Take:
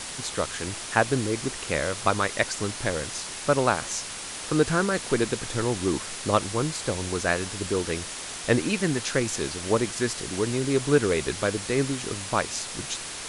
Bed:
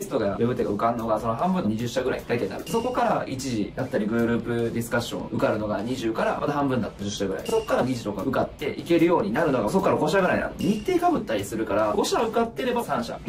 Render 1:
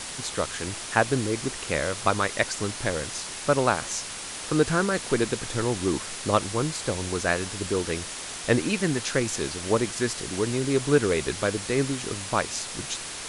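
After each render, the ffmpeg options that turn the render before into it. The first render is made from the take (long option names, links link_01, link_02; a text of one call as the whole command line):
ffmpeg -i in.wav -af anull out.wav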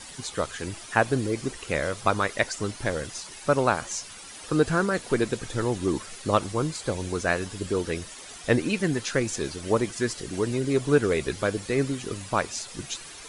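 ffmpeg -i in.wav -af "afftdn=noise_reduction=11:noise_floor=-36" out.wav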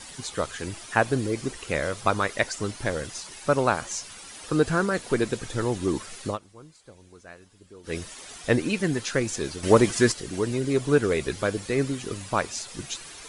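ffmpeg -i in.wav -filter_complex "[0:a]asettb=1/sr,asplit=3[link_01][link_02][link_03];[link_01]atrim=end=9.634[link_04];[link_02]atrim=start=9.63:end=10.12,asetpts=PTS-STARTPTS,afade=type=in:duration=0.004:curve=qsin,afade=type=out:start_time=0.486:duration=0.004:curve=qsin,acontrast=84[link_05];[link_03]atrim=start=10.116[link_06];[link_04][link_05]acrossfade=duration=0.004:curve1=hsin:curve2=qsin[link_07];[link_07][link_06]acrossfade=duration=0.004:curve1=qsin:curve2=hsin,asplit=3[link_08][link_09][link_10];[link_08]atrim=end=6.38,asetpts=PTS-STARTPTS,afade=type=out:start_time=6.26:duration=0.12:silence=0.0891251[link_11];[link_09]atrim=start=6.38:end=7.83,asetpts=PTS-STARTPTS,volume=-21dB[link_12];[link_10]atrim=start=7.83,asetpts=PTS-STARTPTS,afade=type=in:duration=0.12:silence=0.0891251[link_13];[link_11][link_12][link_13]concat=n=3:v=0:a=1" out.wav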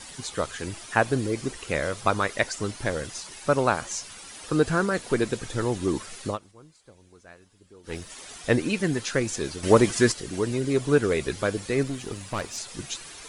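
ffmpeg -i in.wav -filter_complex "[0:a]asettb=1/sr,asplit=3[link_01][link_02][link_03];[link_01]atrim=end=6.514[link_04];[link_02]atrim=start=6.51:end=8.1,asetpts=PTS-STARTPTS,afade=type=in:duration=0.004:curve=qsin,afade=type=out:start_time=1.586:duration=0.004:curve=qsin,aeval=exprs='(tanh(11.2*val(0)+0.65)-tanh(0.65))/11.2':channel_layout=same[link_05];[link_03]atrim=start=8.096[link_06];[link_04][link_05]acrossfade=duration=0.004:curve1=hsin:curve2=qsin[link_07];[link_07][link_06]acrossfade=duration=0.004:curve1=qsin:curve2=hsin,asettb=1/sr,asplit=3[link_08][link_09][link_10];[link_08]atrim=end=11.834[link_11];[link_09]atrim=start=11.83:end=12.58,asetpts=PTS-STARTPTS,afade=type=in:duration=0.004:curve=qsin,afade=type=out:start_time=0.746:duration=0.004:curve=qsin,aeval=exprs='(tanh(14.1*val(0)+0.4)-tanh(0.4))/14.1':channel_layout=same[link_12];[link_10]atrim=start=12.576[link_13];[link_11][link_12]acrossfade=duration=0.004:curve1=hsin:curve2=qsin[link_14];[link_14][link_13]acrossfade=duration=0.004:curve1=qsin:curve2=hsin" out.wav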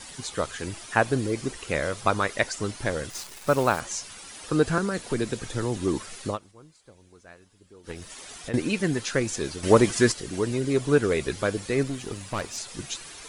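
ffmpeg -i in.wav -filter_complex "[0:a]asettb=1/sr,asplit=3[link_01][link_02][link_03];[link_01]atrim=end=3.104[link_04];[link_02]atrim=start=3.1:end=3.8,asetpts=PTS-STARTPTS,afade=type=in:duration=0.004:curve=qsin,afade=type=out:start_time=0.696:duration=0.004:curve=qsin,acrusher=bits=7:dc=4:mix=0:aa=0.000001[link_05];[link_03]atrim=start=3.796[link_06];[link_04][link_05]acrossfade=duration=0.004:curve1=hsin:curve2=qsin[link_07];[link_07][link_06]acrossfade=duration=0.004:curve1=qsin:curve2=hsin,asettb=1/sr,asplit=3[link_08][link_09][link_10];[link_08]atrim=end=4.784[link_11];[link_09]atrim=start=4.78:end=5.77,asetpts=PTS-STARTPTS,afade=type=in:duration=0.004:curve=qsin,afade=type=out:start_time=0.986:duration=0.004:curve=qsin,acrossover=split=310|3000[link_12][link_13][link_14];[link_13]acompressor=threshold=-27dB:ratio=6:attack=3.2:release=140:knee=2.83:detection=peak[link_15];[link_12][link_15][link_14]amix=inputs=3:normalize=0[link_16];[link_10]atrim=start=5.766[link_17];[link_11][link_16]acrossfade=duration=0.004:curve1=hsin:curve2=qsin[link_18];[link_18][link_17]acrossfade=duration=0.004:curve1=qsin:curve2=hsin,asettb=1/sr,asplit=3[link_19][link_20][link_21];[link_19]atrim=end=7.914[link_22];[link_20]atrim=start=7.91:end=8.54,asetpts=PTS-STARTPTS,afade=type=in:duration=0.004:curve=qsin,afade=type=out:start_time=0.626:duration=0.004:curve=qsin,acompressor=threshold=-34dB:ratio=3:attack=3.2:release=140:knee=1:detection=peak[link_23];[link_21]atrim=start=8.536[link_24];[link_22][link_23]acrossfade=duration=0.004:curve1=hsin:curve2=qsin[link_25];[link_25][link_24]acrossfade=duration=0.004:curve1=qsin:curve2=hsin" out.wav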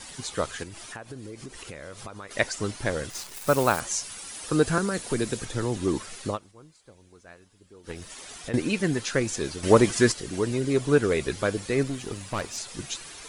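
ffmpeg -i in.wav -filter_complex "[0:a]asettb=1/sr,asplit=3[link_01][link_02][link_03];[link_01]atrim=end=0.634[link_04];[link_02]atrim=start=0.63:end=2.31,asetpts=PTS-STARTPTS,afade=type=in:duration=0.004:curve=qsin,afade=type=out:start_time=1.676:duration=0.004:curve=qsin,acompressor=threshold=-37dB:ratio=6:attack=3.2:release=140:knee=1:detection=peak[link_05];[link_03]atrim=start=2.306[link_06];[link_04][link_05]acrossfade=duration=0.004:curve1=hsin:curve2=qsin[link_07];[link_07][link_06]acrossfade=duration=0.004:curve1=qsin:curve2=hsin,asettb=1/sr,asplit=3[link_08][link_09][link_10];[link_08]atrim=end=3.344[link_11];[link_09]atrim=start=3.34:end=5.45,asetpts=PTS-STARTPTS,afade=type=in:duration=0.004:curve=qsin,afade=type=out:start_time=2.106:duration=0.004:curve=qsin,highshelf=frequency=8400:gain=10[link_12];[link_10]atrim=start=5.446[link_13];[link_11][link_12]acrossfade=duration=0.004:curve1=hsin:curve2=qsin[link_14];[link_14][link_13]acrossfade=duration=0.004:curve1=qsin:curve2=hsin" out.wav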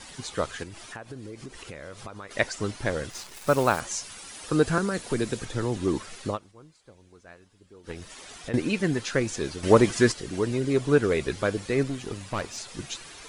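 ffmpeg -i in.wav -af "highshelf=frequency=8400:gain=-9" out.wav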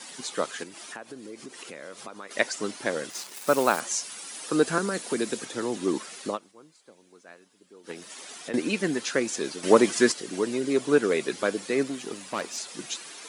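ffmpeg -i in.wav -af "highpass=frequency=200:width=0.5412,highpass=frequency=200:width=1.3066,highshelf=frequency=6000:gain=6" out.wav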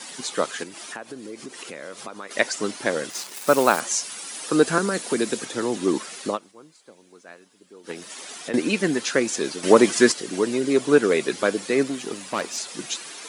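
ffmpeg -i in.wav -af "volume=4.5dB,alimiter=limit=-2dB:level=0:latency=1" out.wav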